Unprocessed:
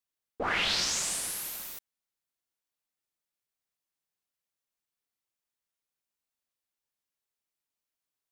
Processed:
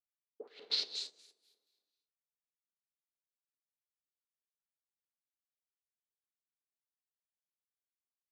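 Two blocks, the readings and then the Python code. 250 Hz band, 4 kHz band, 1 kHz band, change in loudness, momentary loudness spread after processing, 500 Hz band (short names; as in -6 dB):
under -20 dB, -6.5 dB, -27.5 dB, -7.0 dB, 20 LU, -13.0 dB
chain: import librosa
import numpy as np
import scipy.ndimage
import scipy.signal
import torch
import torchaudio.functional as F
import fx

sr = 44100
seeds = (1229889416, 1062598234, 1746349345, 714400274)

p1 = fx.filter_lfo_bandpass(x, sr, shape='square', hz=4.2, low_hz=420.0, high_hz=4100.0, q=6.5)
p2 = scipy.signal.sosfilt(scipy.signal.butter(2, 190.0, 'highpass', fs=sr, output='sos'), p1)
p3 = p2 + fx.room_early_taps(p2, sr, ms=(37, 55), db=(-11.5, -12.5), dry=0)
p4 = fx.rev_gated(p3, sr, seeds[0], gate_ms=280, shape='rising', drr_db=2.5)
p5 = fx.upward_expand(p4, sr, threshold_db=-53.0, expansion=2.5)
y = p5 * librosa.db_to_amplitude(3.5)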